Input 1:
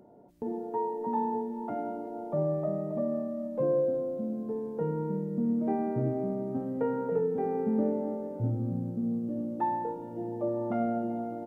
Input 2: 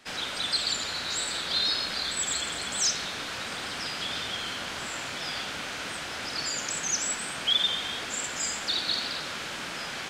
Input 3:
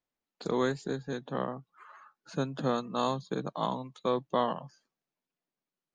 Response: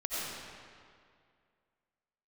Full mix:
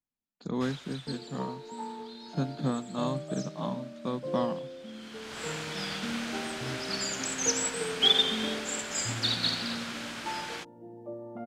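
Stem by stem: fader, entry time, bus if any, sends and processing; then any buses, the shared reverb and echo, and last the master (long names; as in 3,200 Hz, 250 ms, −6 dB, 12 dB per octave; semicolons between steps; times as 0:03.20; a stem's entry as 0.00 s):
−3.0 dB, 0.65 s, no send, no processing
+2.5 dB, 0.55 s, no send, automatic ducking −19 dB, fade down 1.45 s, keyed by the third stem
−1.5 dB, 0.00 s, no send, low shelf with overshoot 310 Hz +7 dB, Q 1.5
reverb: not used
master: expander for the loud parts 1.5 to 1, over −35 dBFS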